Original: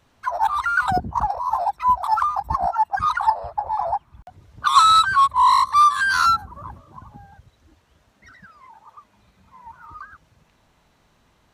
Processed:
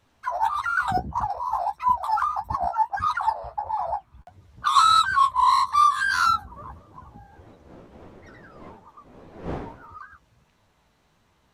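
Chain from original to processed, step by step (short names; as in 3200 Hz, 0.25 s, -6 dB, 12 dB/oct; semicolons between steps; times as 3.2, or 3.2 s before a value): 6.38–9.98 wind noise 520 Hz -39 dBFS; flange 1.6 Hz, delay 8.9 ms, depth 9.6 ms, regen +30%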